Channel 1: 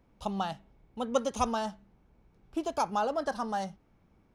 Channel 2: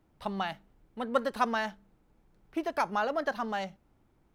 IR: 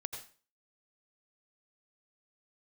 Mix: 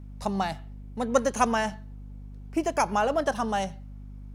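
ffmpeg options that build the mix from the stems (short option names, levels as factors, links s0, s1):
-filter_complex "[0:a]equalizer=f=9000:t=o:w=2.3:g=12.5,volume=0.631[s0];[1:a]aeval=exprs='val(0)+0.00631*(sin(2*PI*50*n/s)+sin(2*PI*2*50*n/s)/2+sin(2*PI*3*50*n/s)/3+sin(2*PI*4*50*n/s)/4+sin(2*PI*5*50*n/s)/5)':c=same,volume=1.26,asplit=2[s1][s2];[s2]volume=0.158[s3];[2:a]atrim=start_sample=2205[s4];[s3][s4]afir=irnorm=-1:irlink=0[s5];[s0][s1][s5]amix=inputs=3:normalize=0"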